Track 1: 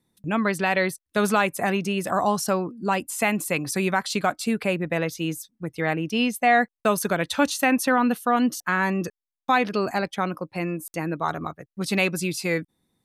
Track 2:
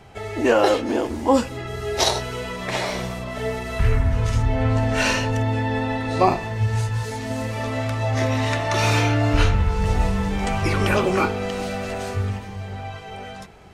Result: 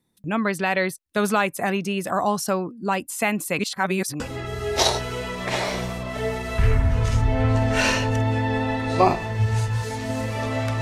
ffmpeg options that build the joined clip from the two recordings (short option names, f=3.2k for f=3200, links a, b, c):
-filter_complex "[0:a]apad=whole_dur=10.81,atrim=end=10.81,asplit=2[a][b];[a]atrim=end=3.592[c];[b]atrim=start=3.588:end=4.202,asetpts=PTS-STARTPTS,areverse[d];[1:a]atrim=start=1.408:end=8.02[e];[c][d]acrossfade=d=0.004:c1=hsin:c2=hsin[f];[f][e]acrossfade=d=0.004:c1=hsin:c2=hsin"